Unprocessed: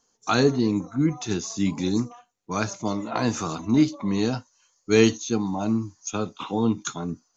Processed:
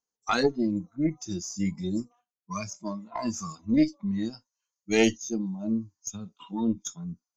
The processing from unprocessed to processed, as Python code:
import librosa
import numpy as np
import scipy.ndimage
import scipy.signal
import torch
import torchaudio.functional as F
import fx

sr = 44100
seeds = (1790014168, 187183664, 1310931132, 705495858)

y = fx.noise_reduce_blind(x, sr, reduce_db=20)
y = fx.cheby_harmonics(y, sr, harmonics=(2,), levels_db=(-9,), full_scale_db=-5.0)
y = F.gain(torch.from_numpy(y), -2.5).numpy()